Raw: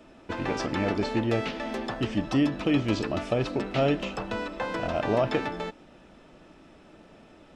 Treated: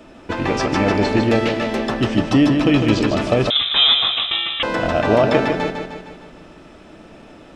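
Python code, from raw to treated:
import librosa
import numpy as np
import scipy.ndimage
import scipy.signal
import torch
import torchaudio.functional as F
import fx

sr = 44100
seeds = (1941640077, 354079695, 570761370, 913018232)

p1 = x + fx.echo_feedback(x, sr, ms=153, feedback_pct=53, wet_db=-6.0, dry=0)
p2 = fx.freq_invert(p1, sr, carrier_hz=3800, at=(3.5, 4.63))
y = p2 * 10.0 ** (9.0 / 20.0)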